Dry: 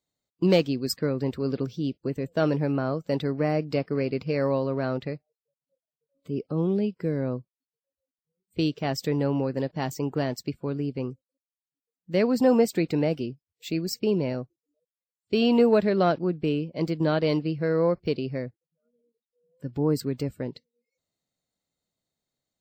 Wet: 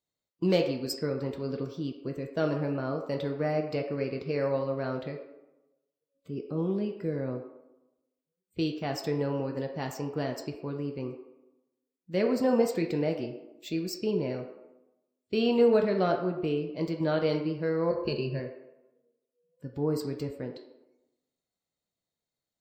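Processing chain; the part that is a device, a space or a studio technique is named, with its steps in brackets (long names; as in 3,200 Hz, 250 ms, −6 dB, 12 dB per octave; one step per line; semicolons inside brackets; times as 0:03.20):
0:17.90–0:18.40: EQ curve with evenly spaced ripples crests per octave 1.4, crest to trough 16 dB
filtered reverb send (on a send: high-pass filter 300 Hz 24 dB per octave + low-pass filter 7,300 Hz 12 dB per octave + convolution reverb RT60 0.95 s, pre-delay 3 ms, DRR 3 dB)
on the sum: level −5.5 dB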